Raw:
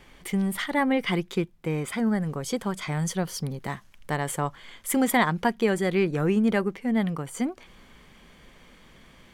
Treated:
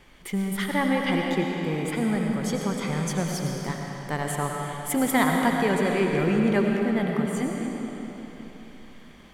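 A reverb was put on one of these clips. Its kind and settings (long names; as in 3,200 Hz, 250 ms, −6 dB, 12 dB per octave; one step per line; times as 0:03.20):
comb and all-pass reverb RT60 3.8 s, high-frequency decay 0.85×, pre-delay 55 ms, DRR 0 dB
level −1.5 dB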